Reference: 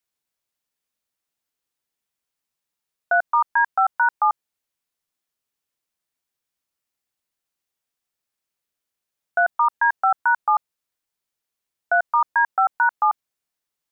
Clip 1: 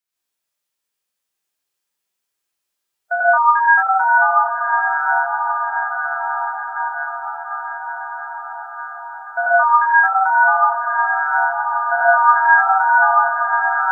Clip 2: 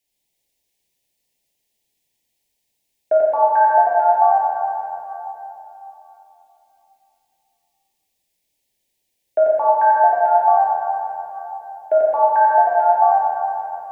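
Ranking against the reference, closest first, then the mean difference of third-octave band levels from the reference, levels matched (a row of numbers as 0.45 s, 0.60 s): 1, 2; 4.0 dB, 6.0 dB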